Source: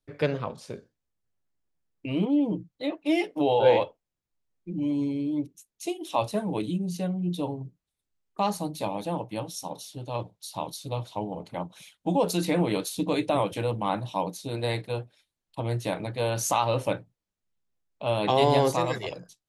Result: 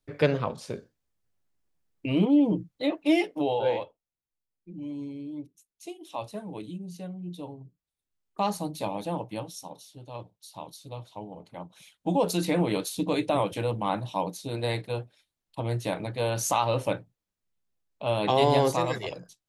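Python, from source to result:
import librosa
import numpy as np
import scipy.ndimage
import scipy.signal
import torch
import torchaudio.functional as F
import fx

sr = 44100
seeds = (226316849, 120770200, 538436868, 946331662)

y = fx.gain(x, sr, db=fx.line((3.07, 3.0), (3.83, -9.0), (7.62, -9.0), (8.4, -1.0), (9.31, -1.0), (9.8, -8.0), (11.54, -8.0), (12.09, -0.5)))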